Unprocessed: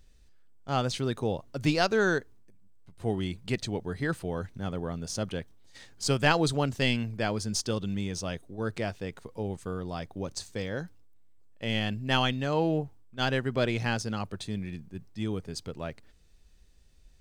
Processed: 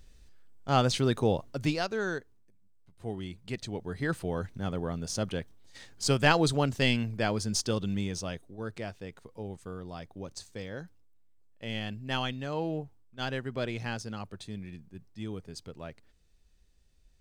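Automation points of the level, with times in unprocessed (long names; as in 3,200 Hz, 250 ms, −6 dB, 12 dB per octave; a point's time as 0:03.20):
0:01.43 +3.5 dB
0:01.85 −7 dB
0:03.44 −7 dB
0:04.21 +0.5 dB
0:08.00 +0.5 dB
0:08.69 −6 dB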